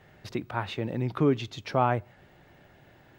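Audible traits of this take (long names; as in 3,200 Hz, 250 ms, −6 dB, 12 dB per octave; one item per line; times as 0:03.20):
background noise floor −58 dBFS
spectral slope −6.0 dB per octave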